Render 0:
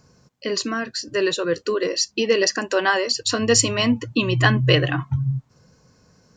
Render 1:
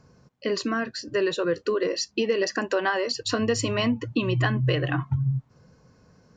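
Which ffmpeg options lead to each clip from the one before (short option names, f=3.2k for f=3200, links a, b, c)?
-af "lowpass=f=2.4k:p=1,acompressor=threshold=-20dB:ratio=6"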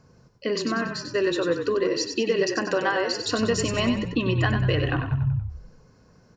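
-filter_complex "[0:a]asplit=6[a][b][c][d][e][f];[b]adelay=95,afreqshift=-31,volume=-6.5dB[g];[c]adelay=190,afreqshift=-62,volume=-13.4dB[h];[d]adelay=285,afreqshift=-93,volume=-20.4dB[i];[e]adelay=380,afreqshift=-124,volume=-27.3dB[j];[f]adelay=475,afreqshift=-155,volume=-34.2dB[k];[a][g][h][i][j][k]amix=inputs=6:normalize=0"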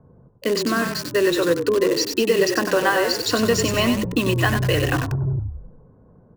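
-filter_complex "[0:a]acrossover=split=280|1100[a][b][c];[a]asoftclip=type=tanh:threshold=-24dB[d];[c]acrusher=bits=5:mix=0:aa=0.000001[e];[d][b][e]amix=inputs=3:normalize=0,volume=5dB"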